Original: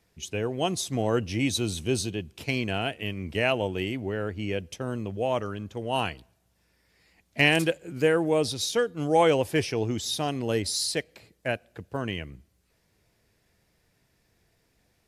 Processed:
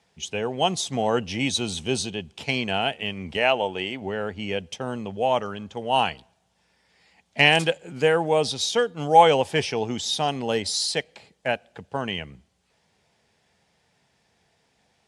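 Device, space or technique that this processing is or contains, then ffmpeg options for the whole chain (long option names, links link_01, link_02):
car door speaker: -filter_complex "[0:a]highpass=100,equalizer=frequency=110:width_type=q:width=4:gain=-7,equalizer=frequency=320:width_type=q:width=4:gain=-8,equalizer=frequency=830:width_type=q:width=4:gain=8,equalizer=frequency=3200:width_type=q:width=4:gain=5,lowpass=frequency=9100:width=0.5412,lowpass=frequency=9100:width=1.3066,asettb=1/sr,asplit=3[link_01][link_02][link_03];[link_01]atrim=end=3.374[link_04];[link_02]atrim=start=3.37:end=4.02,asetpts=PTS-STARTPTS,afade=type=in:duration=0.004:curve=qsin,afade=type=out:start_time=0.646:duration=0.004:curve=qsin,bass=frequency=250:gain=-7,treble=frequency=4000:gain=-3[link_05];[link_03]atrim=start=4.016[link_06];[link_04][link_05]acrossfade=duration=0.004:curve1=hsin:curve2=qsin[link_07];[link_07][link_06]acrossfade=duration=0.004:curve1=qsin:curve2=hsin,volume=3dB"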